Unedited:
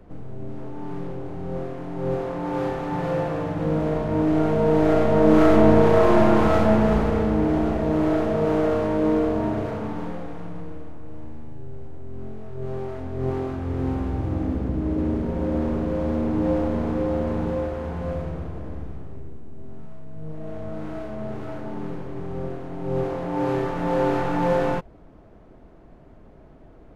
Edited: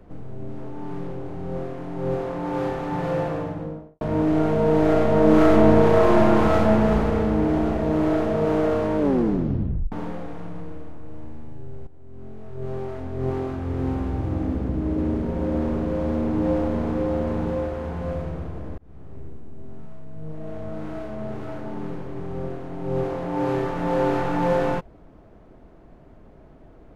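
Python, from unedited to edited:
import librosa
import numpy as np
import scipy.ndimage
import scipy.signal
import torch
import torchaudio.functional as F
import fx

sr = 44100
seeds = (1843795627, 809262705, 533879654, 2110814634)

y = fx.studio_fade_out(x, sr, start_s=3.24, length_s=0.77)
y = fx.edit(y, sr, fx.tape_stop(start_s=8.99, length_s=0.93),
    fx.fade_in_from(start_s=11.87, length_s=0.78, floor_db=-13.5),
    fx.fade_in_span(start_s=18.78, length_s=0.46), tone=tone)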